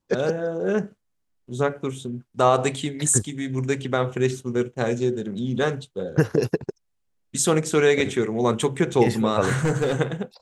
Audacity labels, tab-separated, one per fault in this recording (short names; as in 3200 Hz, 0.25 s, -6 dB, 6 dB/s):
9.450000	9.960000	clipped -16.5 dBFS